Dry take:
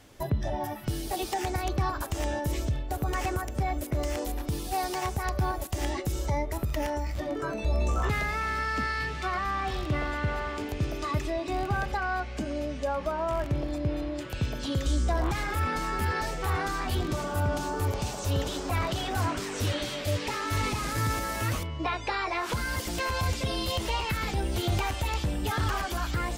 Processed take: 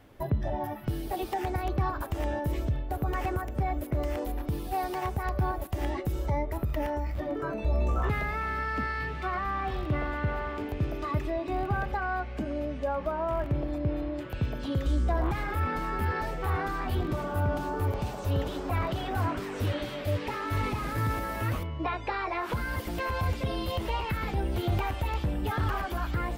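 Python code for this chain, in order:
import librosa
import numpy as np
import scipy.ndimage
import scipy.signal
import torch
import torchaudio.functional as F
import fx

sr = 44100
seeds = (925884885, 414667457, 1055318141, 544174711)

y = fx.peak_eq(x, sr, hz=6800.0, db=-14.5, octaves=1.8)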